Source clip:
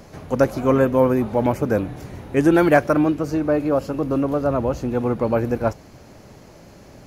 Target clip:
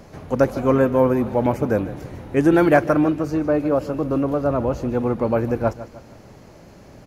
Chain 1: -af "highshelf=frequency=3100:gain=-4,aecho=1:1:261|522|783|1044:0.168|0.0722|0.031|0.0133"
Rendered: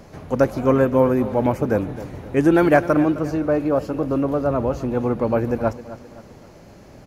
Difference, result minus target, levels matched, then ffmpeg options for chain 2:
echo 107 ms late
-af "highshelf=frequency=3100:gain=-4,aecho=1:1:154|308|462|616:0.168|0.0722|0.031|0.0133"

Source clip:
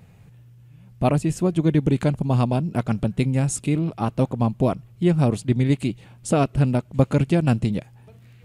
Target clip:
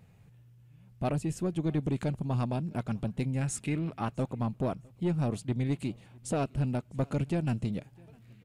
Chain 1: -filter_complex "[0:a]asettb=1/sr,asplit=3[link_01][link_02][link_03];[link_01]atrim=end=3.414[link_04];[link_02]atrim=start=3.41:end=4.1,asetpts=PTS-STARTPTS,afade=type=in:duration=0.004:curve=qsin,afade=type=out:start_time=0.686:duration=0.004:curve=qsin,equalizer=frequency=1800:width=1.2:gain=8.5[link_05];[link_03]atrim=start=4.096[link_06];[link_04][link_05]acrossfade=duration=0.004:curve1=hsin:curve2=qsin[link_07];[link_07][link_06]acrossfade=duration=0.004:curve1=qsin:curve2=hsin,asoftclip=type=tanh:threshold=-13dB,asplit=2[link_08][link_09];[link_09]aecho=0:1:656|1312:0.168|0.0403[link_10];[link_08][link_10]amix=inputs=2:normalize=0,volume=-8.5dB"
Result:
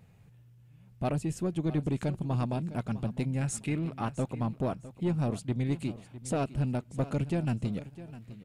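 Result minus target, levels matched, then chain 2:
echo-to-direct +11.5 dB
-filter_complex "[0:a]asettb=1/sr,asplit=3[link_01][link_02][link_03];[link_01]atrim=end=3.414[link_04];[link_02]atrim=start=3.41:end=4.1,asetpts=PTS-STARTPTS,afade=type=in:duration=0.004:curve=qsin,afade=type=out:start_time=0.686:duration=0.004:curve=qsin,equalizer=frequency=1800:width=1.2:gain=8.5[link_05];[link_03]atrim=start=4.096[link_06];[link_04][link_05]acrossfade=duration=0.004:curve1=hsin:curve2=qsin[link_07];[link_07][link_06]acrossfade=duration=0.004:curve1=qsin:curve2=hsin,asoftclip=type=tanh:threshold=-13dB,asplit=2[link_08][link_09];[link_09]aecho=0:1:656|1312:0.0447|0.0107[link_10];[link_08][link_10]amix=inputs=2:normalize=0,volume=-8.5dB"

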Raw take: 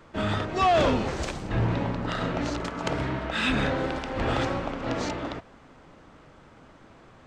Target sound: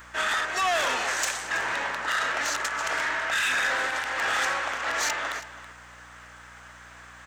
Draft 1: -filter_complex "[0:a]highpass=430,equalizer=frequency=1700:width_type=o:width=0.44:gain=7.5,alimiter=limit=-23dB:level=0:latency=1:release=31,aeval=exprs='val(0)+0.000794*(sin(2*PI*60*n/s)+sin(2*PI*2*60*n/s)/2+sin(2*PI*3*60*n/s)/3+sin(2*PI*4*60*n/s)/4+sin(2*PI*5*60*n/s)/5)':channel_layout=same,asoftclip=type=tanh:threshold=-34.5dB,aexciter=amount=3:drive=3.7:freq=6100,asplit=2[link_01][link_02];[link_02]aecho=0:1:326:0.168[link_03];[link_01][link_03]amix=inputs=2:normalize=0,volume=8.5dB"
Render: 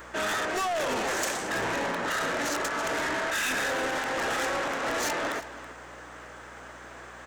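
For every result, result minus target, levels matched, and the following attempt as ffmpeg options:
500 Hz band +7.0 dB; soft clipping: distortion +7 dB
-filter_complex "[0:a]highpass=1100,equalizer=frequency=1700:width_type=o:width=0.44:gain=7.5,alimiter=limit=-23dB:level=0:latency=1:release=31,aeval=exprs='val(0)+0.000794*(sin(2*PI*60*n/s)+sin(2*PI*2*60*n/s)/2+sin(2*PI*3*60*n/s)/3+sin(2*PI*4*60*n/s)/4+sin(2*PI*5*60*n/s)/5)':channel_layout=same,asoftclip=type=tanh:threshold=-34.5dB,aexciter=amount=3:drive=3.7:freq=6100,asplit=2[link_01][link_02];[link_02]aecho=0:1:326:0.168[link_03];[link_01][link_03]amix=inputs=2:normalize=0,volume=8.5dB"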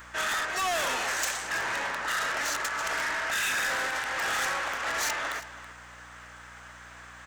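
soft clipping: distortion +7 dB
-filter_complex "[0:a]highpass=1100,equalizer=frequency=1700:width_type=o:width=0.44:gain=7.5,alimiter=limit=-23dB:level=0:latency=1:release=31,aeval=exprs='val(0)+0.000794*(sin(2*PI*60*n/s)+sin(2*PI*2*60*n/s)/2+sin(2*PI*3*60*n/s)/3+sin(2*PI*4*60*n/s)/4+sin(2*PI*5*60*n/s)/5)':channel_layout=same,asoftclip=type=tanh:threshold=-28dB,aexciter=amount=3:drive=3.7:freq=6100,asplit=2[link_01][link_02];[link_02]aecho=0:1:326:0.168[link_03];[link_01][link_03]amix=inputs=2:normalize=0,volume=8.5dB"

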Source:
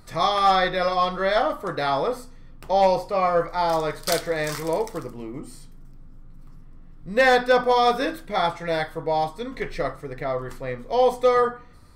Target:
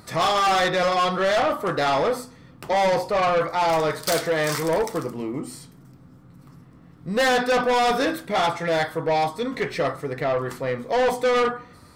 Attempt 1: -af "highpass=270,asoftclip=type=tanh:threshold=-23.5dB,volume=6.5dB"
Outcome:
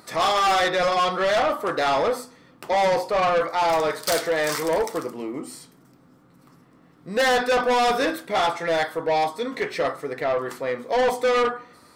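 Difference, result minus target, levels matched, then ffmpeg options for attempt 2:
125 Hz band −7.0 dB
-af "highpass=110,asoftclip=type=tanh:threshold=-23.5dB,volume=6.5dB"

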